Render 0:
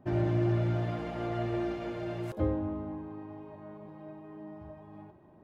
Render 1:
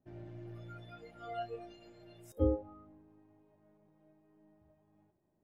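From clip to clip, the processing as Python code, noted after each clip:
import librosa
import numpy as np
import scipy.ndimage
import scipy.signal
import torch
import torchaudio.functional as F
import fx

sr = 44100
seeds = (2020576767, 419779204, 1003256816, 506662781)

y = np.where(x < 0.0, 10.0 ** (-3.0 / 20.0) * x, x)
y = fx.noise_reduce_blind(y, sr, reduce_db=23)
y = fx.peak_eq(y, sr, hz=1100.0, db=-5.5, octaves=0.73)
y = y * librosa.db_to_amplitude(4.0)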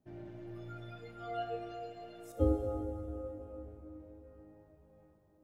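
y = fx.rev_plate(x, sr, seeds[0], rt60_s=4.7, hf_ratio=0.6, predelay_ms=0, drr_db=3.0)
y = y * librosa.db_to_amplitude(1.0)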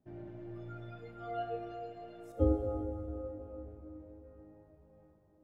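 y = fx.high_shelf(x, sr, hz=3100.0, db=-11.5)
y = y * librosa.db_to_amplitude(1.0)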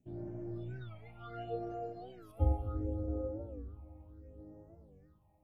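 y = fx.phaser_stages(x, sr, stages=6, low_hz=380.0, high_hz=3500.0, hz=0.7, feedback_pct=50)
y = fx.record_warp(y, sr, rpm=45.0, depth_cents=160.0)
y = y * librosa.db_to_amplitude(1.5)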